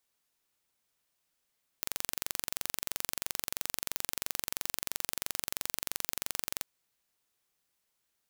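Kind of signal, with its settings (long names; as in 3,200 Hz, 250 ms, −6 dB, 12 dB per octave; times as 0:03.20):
impulse train 23 per second, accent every 0, −5 dBFS 4.79 s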